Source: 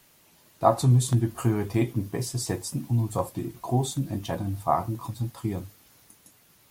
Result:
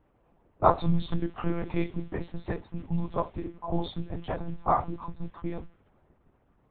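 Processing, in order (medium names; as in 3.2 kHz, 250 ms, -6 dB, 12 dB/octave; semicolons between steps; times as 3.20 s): level-controlled noise filter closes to 860 Hz, open at -18.5 dBFS; dynamic bell 180 Hz, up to -6 dB, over -35 dBFS, Q 0.76; monotone LPC vocoder at 8 kHz 170 Hz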